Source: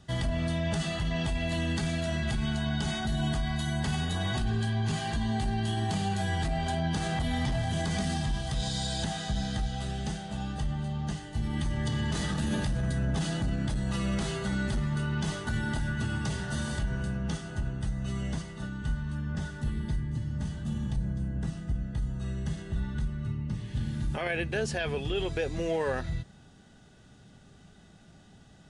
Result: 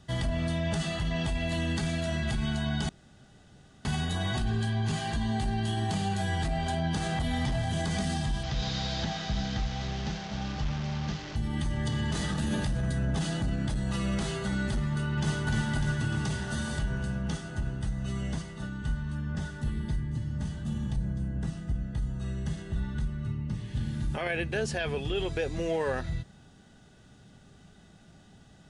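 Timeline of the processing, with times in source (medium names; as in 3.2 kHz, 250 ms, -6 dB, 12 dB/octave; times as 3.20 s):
2.89–3.85 s: room tone
8.43–11.36 s: one-bit delta coder 32 kbps, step -34 dBFS
14.87–15.47 s: echo throw 300 ms, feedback 70%, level -3.5 dB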